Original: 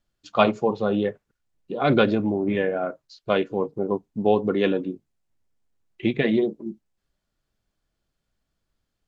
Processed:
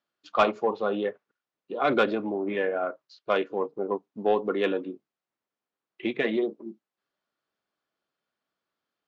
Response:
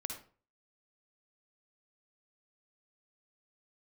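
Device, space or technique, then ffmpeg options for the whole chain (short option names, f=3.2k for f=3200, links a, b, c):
intercom: -af "highpass=320,lowpass=4.4k,equalizer=f=1.2k:t=o:w=0.57:g=4.5,asoftclip=type=tanh:threshold=-8.5dB,volume=-2dB"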